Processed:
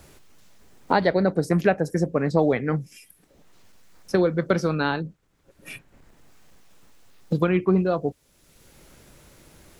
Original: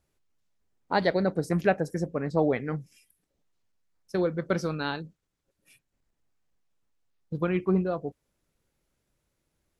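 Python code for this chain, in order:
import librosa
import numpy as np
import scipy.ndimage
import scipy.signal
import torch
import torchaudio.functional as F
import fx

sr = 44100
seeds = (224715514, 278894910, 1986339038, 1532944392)

y = fx.band_squash(x, sr, depth_pct=70)
y = y * librosa.db_to_amplitude(5.5)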